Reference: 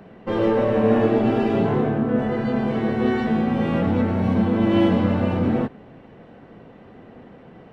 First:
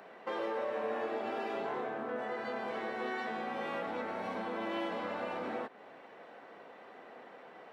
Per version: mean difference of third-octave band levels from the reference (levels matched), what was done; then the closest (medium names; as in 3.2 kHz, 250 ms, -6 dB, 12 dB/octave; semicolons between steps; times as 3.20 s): 8.5 dB: high-pass 650 Hz 12 dB/octave; peaking EQ 2.9 kHz -4 dB 0.24 oct; compression 2.5:1, threshold -38 dBFS, peak gain reduction 11 dB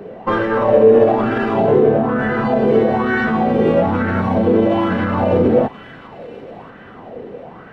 3.0 dB: peak limiter -16 dBFS, peak gain reduction 9 dB; feedback echo behind a high-pass 1030 ms, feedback 32%, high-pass 2.1 kHz, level -11 dB; sweeping bell 1.1 Hz 420–1600 Hz +15 dB; trim +4.5 dB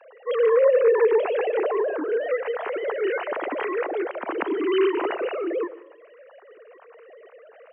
11.5 dB: formants replaced by sine waves; high-pass 460 Hz 12 dB/octave; plate-style reverb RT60 0.75 s, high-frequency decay 0.8×, pre-delay 110 ms, DRR 17.5 dB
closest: second